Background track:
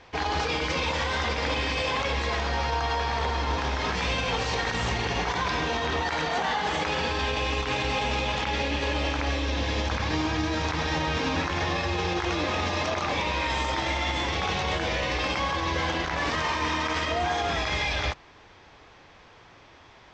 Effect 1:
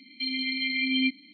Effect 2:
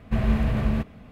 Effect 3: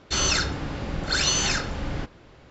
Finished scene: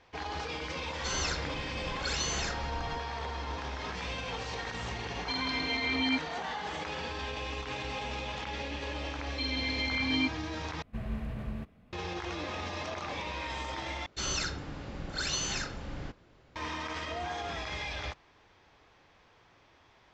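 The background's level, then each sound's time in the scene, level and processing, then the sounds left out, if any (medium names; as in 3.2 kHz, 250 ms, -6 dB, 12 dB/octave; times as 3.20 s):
background track -10 dB
0.93 s: add 3 -11 dB
5.08 s: add 1 -4.5 dB
9.18 s: add 1 -4.5 dB
10.82 s: replace with 2 -14 dB
14.06 s: replace with 3 -10 dB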